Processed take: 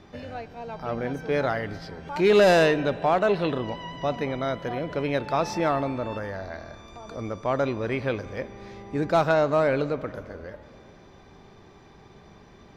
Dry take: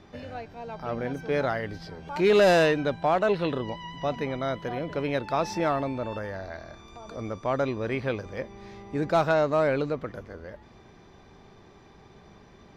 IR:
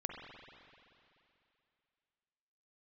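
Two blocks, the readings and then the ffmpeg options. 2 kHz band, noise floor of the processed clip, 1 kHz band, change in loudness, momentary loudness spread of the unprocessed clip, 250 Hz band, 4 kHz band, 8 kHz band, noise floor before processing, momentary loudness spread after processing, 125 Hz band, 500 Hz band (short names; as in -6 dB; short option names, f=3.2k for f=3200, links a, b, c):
+1.5 dB, -51 dBFS, +1.5 dB, +1.5 dB, 18 LU, +1.5 dB, +1.5 dB, +1.5 dB, -53 dBFS, 18 LU, +1.5 dB, +1.5 dB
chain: -filter_complex "[0:a]asplit=2[a][b];[1:a]atrim=start_sample=2205,asetrate=43659,aresample=44100[c];[b][c]afir=irnorm=-1:irlink=0,volume=-11.5dB[d];[a][d]amix=inputs=2:normalize=0"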